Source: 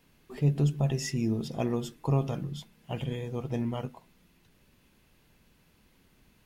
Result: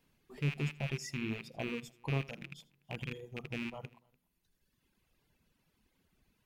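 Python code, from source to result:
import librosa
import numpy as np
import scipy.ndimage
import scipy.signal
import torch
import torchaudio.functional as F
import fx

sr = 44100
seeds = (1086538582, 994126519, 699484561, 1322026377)

y = fx.rattle_buzz(x, sr, strikes_db=-31.0, level_db=-20.0)
y = fx.echo_multitap(y, sr, ms=(80, 293), db=(-10.0, -19.0))
y = fx.dereverb_blind(y, sr, rt60_s=1.5)
y = F.gain(torch.from_numpy(y), -8.5).numpy()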